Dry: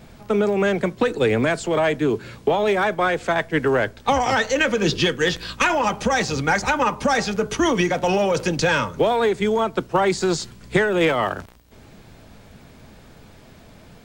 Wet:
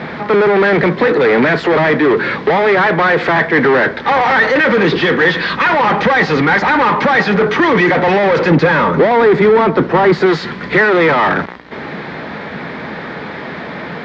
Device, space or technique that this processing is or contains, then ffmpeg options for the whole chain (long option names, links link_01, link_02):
overdrive pedal into a guitar cabinet: -filter_complex "[0:a]asplit=2[link_01][link_02];[link_02]highpass=frequency=720:poles=1,volume=34dB,asoftclip=type=tanh:threshold=-5.5dB[link_03];[link_01][link_03]amix=inputs=2:normalize=0,lowpass=frequency=1300:poles=1,volume=-6dB,highpass=83,equalizer=frequency=110:width_type=q:width=4:gain=-10,equalizer=frequency=160:width_type=q:width=4:gain=5,equalizer=frequency=660:width_type=q:width=4:gain=-5,equalizer=frequency=1900:width_type=q:width=4:gain=7,equalizer=frequency=2800:width_type=q:width=4:gain=-5,lowpass=frequency=4200:width=0.5412,lowpass=frequency=4200:width=1.3066,asettb=1/sr,asplit=3[link_04][link_05][link_06];[link_04]atrim=end=8.514[link_07];[link_05]atrim=start=8.51:end=10.26,asetpts=PTS-STARTPTS,afade=type=in:duration=0.004:curve=qsin,afade=type=out:start_time=1.746:duration=0.004:curve=qsin,tiltshelf=frequency=970:gain=3.5[link_08];[link_06]atrim=start=10.256[link_09];[link_07][link_08]acrossfade=duration=0.004:curve1=hsin:curve2=qsin[link_10];[link_10][link_09]acrossfade=duration=0.004:curve1=qsin:curve2=hsin,volume=2.5dB"